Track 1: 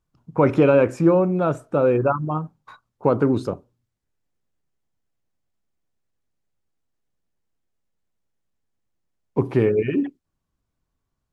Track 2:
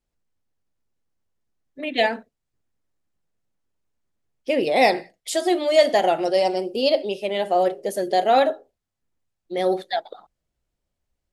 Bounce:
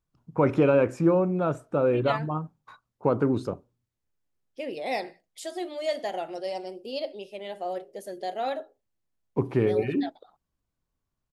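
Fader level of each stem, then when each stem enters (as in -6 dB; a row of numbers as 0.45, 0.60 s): -5.0, -13.0 dB; 0.00, 0.10 s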